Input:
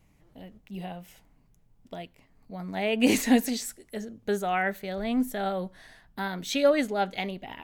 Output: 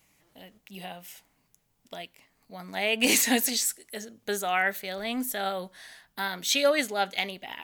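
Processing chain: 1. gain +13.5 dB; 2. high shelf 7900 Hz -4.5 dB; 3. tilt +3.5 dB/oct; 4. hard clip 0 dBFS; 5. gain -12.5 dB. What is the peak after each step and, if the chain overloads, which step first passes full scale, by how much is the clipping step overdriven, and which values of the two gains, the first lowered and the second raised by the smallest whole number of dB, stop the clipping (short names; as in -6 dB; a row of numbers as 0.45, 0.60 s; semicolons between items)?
+4.5, +4.0, +5.0, 0.0, -12.5 dBFS; step 1, 5.0 dB; step 1 +8.5 dB, step 5 -7.5 dB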